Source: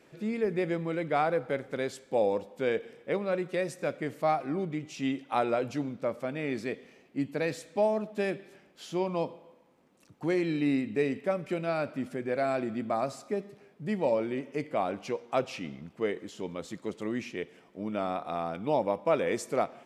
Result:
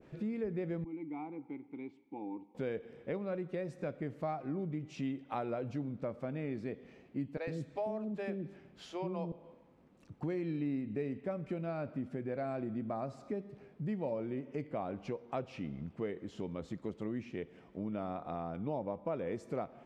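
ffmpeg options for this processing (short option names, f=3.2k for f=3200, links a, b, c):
-filter_complex "[0:a]asettb=1/sr,asplit=3[a][b][c];[a]atrim=end=0.844[d];[b]atrim=start=0.84:end=2.55,asetpts=PTS-STARTPTS,afade=t=in:d=0.004:c=qsin,afade=t=out:st=1.706:d=0.004:c=qsin,asplit=3[e][f][g];[e]bandpass=f=300:t=q:w=8,volume=0dB[h];[f]bandpass=f=870:t=q:w=8,volume=-6dB[i];[g]bandpass=f=2.24k:t=q:w=8,volume=-9dB[j];[h][i][j]amix=inputs=3:normalize=0[k];[c]atrim=start=2.546[l];[d][k]acrossfade=d=0.004:c1=hsin:c2=qsin[m];[m][l]acrossfade=d=0.004:c1=qsin:c2=hsin,asettb=1/sr,asplit=3[n][o][p];[n]atrim=end=7.374[q];[o]atrim=start=7.37:end=9.32,asetpts=PTS-STARTPTS,afade=t=in:d=0.004:c=qsin,afade=t=out:st=1.946:d=0.004:c=qsin,acrossover=split=400[r][s];[r]adelay=100[t];[t][s]amix=inputs=2:normalize=0,atrim=end_sample=85995[u];[p]atrim=start=9.316[v];[q][u]acrossfade=d=0.004:c1=hsin:c2=qsin[w];[w][v]acrossfade=d=0.004:c1=qsin:c2=hsin,aemphasis=mode=reproduction:type=bsi,acompressor=threshold=-36dB:ratio=2.5,adynamicequalizer=threshold=0.00282:dfrequency=1500:dqfactor=0.7:tfrequency=1500:tqfactor=0.7:attack=5:release=100:ratio=0.375:range=2.5:mode=cutabove:tftype=highshelf,volume=-2dB"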